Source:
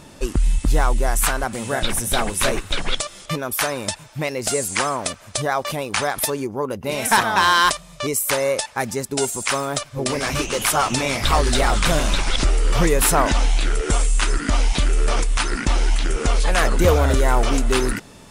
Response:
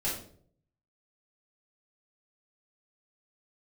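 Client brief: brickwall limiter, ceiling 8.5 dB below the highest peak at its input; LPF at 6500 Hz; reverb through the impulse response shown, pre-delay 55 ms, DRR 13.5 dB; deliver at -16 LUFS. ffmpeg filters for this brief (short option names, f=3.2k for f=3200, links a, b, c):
-filter_complex "[0:a]lowpass=6.5k,alimiter=limit=-15.5dB:level=0:latency=1,asplit=2[a][b];[1:a]atrim=start_sample=2205,adelay=55[c];[b][c]afir=irnorm=-1:irlink=0,volume=-19.5dB[d];[a][d]amix=inputs=2:normalize=0,volume=9.5dB"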